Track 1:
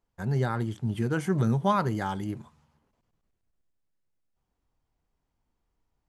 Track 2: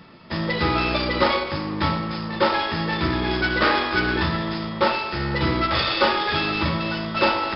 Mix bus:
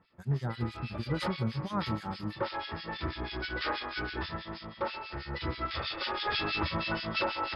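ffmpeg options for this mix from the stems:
-filter_complex "[0:a]bandreject=f=50:t=h:w=6,bandreject=f=100:t=h:w=6,volume=0.473[s0];[1:a]equalizer=f=180:w=0.79:g=-13.5,afade=t=in:st=1.02:d=0.21:silence=0.421697,afade=t=in:st=6.13:d=0.25:silence=0.398107[s1];[s0][s1]amix=inputs=2:normalize=0,equalizer=f=120:t=o:w=2.7:g=7.5,acrossover=split=1800[s2][s3];[s2]aeval=exprs='val(0)*(1-1/2+1/2*cos(2*PI*6.2*n/s))':c=same[s4];[s3]aeval=exprs='val(0)*(1-1/2-1/2*cos(2*PI*6.2*n/s))':c=same[s5];[s4][s5]amix=inputs=2:normalize=0,alimiter=limit=0.0891:level=0:latency=1:release=285"

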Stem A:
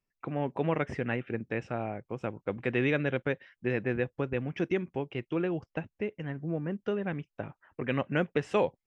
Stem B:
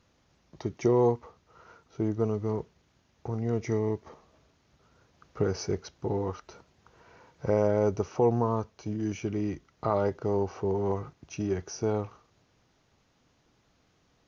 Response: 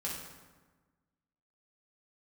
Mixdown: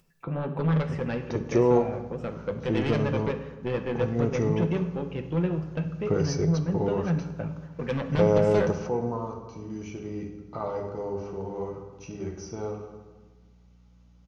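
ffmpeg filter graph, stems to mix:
-filter_complex "[0:a]equalizer=f=100:t=o:w=0.33:g=6,equalizer=f=160:t=o:w=0.33:g=10,equalizer=f=500:t=o:w=0.33:g=4,equalizer=f=2000:t=o:w=0.33:g=-6,aeval=exprs='0.237*sin(PI/2*2.51*val(0)/0.237)':c=same,flanger=delay=3.2:depth=6.3:regen=-65:speed=1.8:shape=triangular,volume=0.335,asplit=3[s0][s1][s2];[s1]volume=0.531[s3];[1:a]bandreject=f=1700:w=11,aeval=exprs='val(0)+0.00355*(sin(2*PI*60*n/s)+sin(2*PI*2*60*n/s)/2+sin(2*PI*3*60*n/s)/3+sin(2*PI*4*60*n/s)/4+sin(2*PI*5*60*n/s)/5)':c=same,adelay=700,volume=1,asplit=2[s4][s5];[s5]volume=0.376[s6];[s2]apad=whole_len=660386[s7];[s4][s7]sidechaingate=range=0.251:threshold=0.00141:ratio=16:detection=peak[s8];[2:a]atrim=start_sample=2205[s9];[s3][s6]amix=inputs=2:normalize=0[s10];[s10][s9]afir=irnorm=-1:irlink=0[s11];[s0][s8][s11]amix=inputs=3:normalize=0,acompressor=mode=upward:threshold=0.00224:ratio=2.5"

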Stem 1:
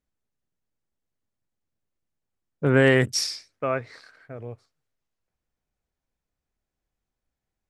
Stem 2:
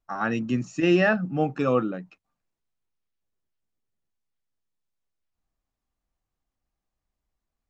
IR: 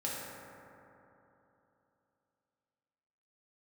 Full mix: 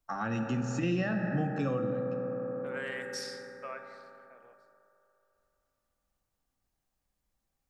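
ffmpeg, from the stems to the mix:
-filter_complex "[0:a]highpass=860,highshelf=f=3700:g=-9.5,volume=0.211,asplit=2[s0][s1];[s1]volume=0.473[s2];[1:a]volume=0.668,asplit=2[s3][s4];[s4]volume=0.596[s5];[2:a]atrim=start_sample=2205[s6];[s2][s5]amix=inputs=2:normalize=0[s7];[s7][s6]afir=irnorm=-1:irlink=0[s8];[s0][s3][s8]amix=inputs=3:normalize=0,highshelf=f=5000:g=7,acrossover=split=170[s9][s10];[s10]acompressor=threshold=0.02:ratio=4[s11];[s9][s11]amix=inputs=2:normalize=0"

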